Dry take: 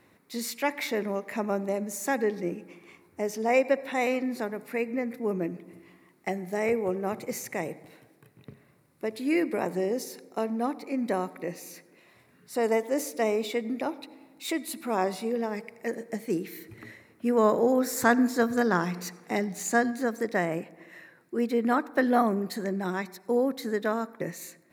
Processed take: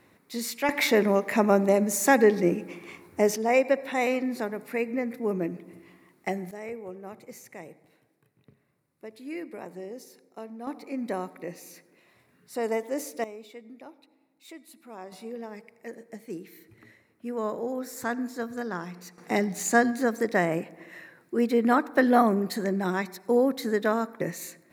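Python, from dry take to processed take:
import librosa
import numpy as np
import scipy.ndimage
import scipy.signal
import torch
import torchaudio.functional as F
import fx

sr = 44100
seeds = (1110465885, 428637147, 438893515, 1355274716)

y = fx.gain(x, sr, db=fx.steps((0.0, 1.0), (0.69, 8.0), (3.36, 1.0), (6.51, -11.0), (10.67, -3.0), (13.24, -15.5), (15.12, -8.5), (19.18, 3.0)))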